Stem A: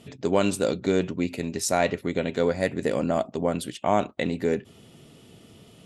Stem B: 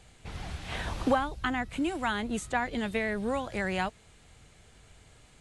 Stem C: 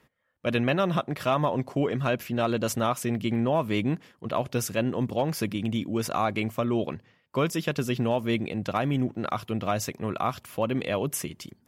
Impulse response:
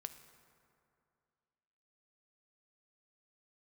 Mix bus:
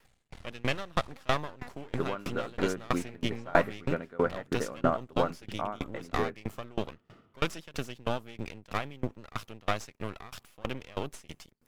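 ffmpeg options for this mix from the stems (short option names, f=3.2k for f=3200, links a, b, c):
-filter_complex "[0:a]lowpass=1.9k,equalizer=f=1.3k:t=o:w=0.73:g=14,adelay=1750,volume=-1dB[a];[1:a]acompressor=threshold=-36dB:ratio=6,aeval=exprs='max(val(0),0)':c=same,adelay=50,volume=-2.5dB,asplit=3[b][c][d];[c]volume=-5dB[e];[d]volume=-7.5dB[f];[2:a]tiltshelf=f=970:g=-3.5,aeval=exprs='max(val(0),0)':c=same,volume=3dB,asplit=2[g][h];[h]volume=-22.5dB[i];[3:a]atrim=start_sample=2205[j];[e][i]amix=inputs=2:normalize=0[k];[k][j]afir=irnorm=-1:irlink=0[l];[f]aecho=0:1:377:1[m];[a][b][g][l][m]amix=inputs=5:normalize=0,acrossover=split=9500[n][o];[o]acompressor=threshold=-50dB:ratio=4:attack=1:release=60[p];[n][p]amix=inputs=2:normalize=0,aeval=exprs='val(0)*pow(10,-27*if(lt(mod(3.1*n/s,1),2*abs(3.1)/1000),1-mod(3.1*n/s,1)/(2*abs(3.1)/1000),(mod(3.1*n/s,1)-2*abs(3.1)/1000)/(1-2*abs(3.1)/1000))/20)':c=same"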